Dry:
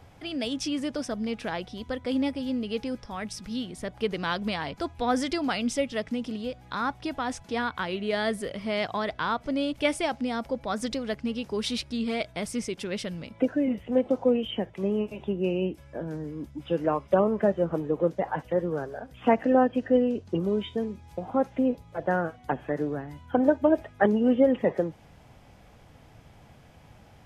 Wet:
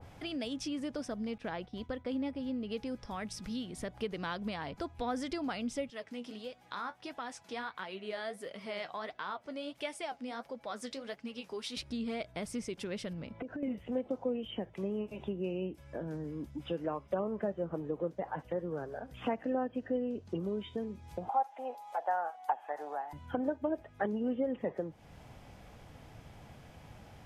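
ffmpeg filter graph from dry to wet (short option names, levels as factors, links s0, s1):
-filter_complex "[0:a]asettb=1/sr,asplit=3[s0][s1][s2];[s0]atrim=end=1.384[s3];[s1]atrim=start=1.38:end=2.72,asetpts=PTS-STARTPTS,afade=t=in:d=0.004:c=qsin,afade=t=out:st=1.336:d=0.004:c=qsin,highshelf=f=5600:g=-10.5,agate=range=0.0224:threshold=0.00891:ratio=3:release=100:detection=peak[s4];[s2]atrim=start=2.716[s5];[s3][s4]acrossfade=d=0.004:c1=hsin:c2=qsin[s6];[s6][s5]acrossfade=d=0.004:c1=qsin:c2=hsin,asettb=1/sr,asplit=3[s7][s8][s9];[s7]atrim=end=5.904[s10];[s8]atrim=start=5.9:end=11.77,asetpts=PTS-STARTPTS,afade=t=in:d=0.004:c=qsin,afade=t=out:st=5.866:d=0.004:c=qsin,highpass=f=520:p=1,flanger=delay=4.4:depth=8.1:regen=49:speed=1.5:shape=sinusoidal[s11];[s9]atrim=start=11.766[s12];[s10][s11]acrossfade=d=0.004:c1=hsin:c2=qsin[s13];[s13][s12]acrossfade=d=0.004:c1=qsin:c2=hsin,asettb=1/sr,asplit=3[s14][s15][s16];[s14]atrim=end=13.134[s17];[s15]atrim=start=13.13:end=13.63,asetpts=PTS-STARTPTS,afade=t=in:d=0.004:c=qsin,afade=t=out:st=0.496:d=0.004:c=qsin,lowpass=f=2000:p=1,acompressor=threshold=0.0224:ratio=10:attack=3.2:release=140:knee=1:detection=peak[s18];[s16]atrim=start=13.626[s19];[s17][s18]acrossfade=d=0.004:c1=hsin:c2=qsin[s20];[s20][s19]acrossfade=d=0.004:c1=qsin:c2=hsin,asettb=1/sr,asplit=3[s21][s22][s23];[s21]atrim=end=21.294[s24];[s22]atrim=start=21.29:end=23.13,asetpts=PTS-STARTPTS,afade=t=in:d=0.004:c=qsin,afade=t=out:st=1.836:d=0.004:c=qsin,highpass=f=800:t=q:w=8.1,aemphasis=mode=production:type=cd[s25];[s23]atrim=start=23.126[s26];[s24][s25]acrossfade=d=0.004:c1=hsin:c2=qsin[s27];[s27][s26]acrossfade=d=0.004:c1=qsin:c2=hsin,acompressor=threshold=0.01:ratio=2,adynamicequalizer=threshold=0.00355:dfrequency=1800:dqfactor=0.7:tfrequency=1800:tqfactor=0.7:attack=5:release=100:ratio=0.375:range=2.5:mode=cutabove:tftype=highshelf"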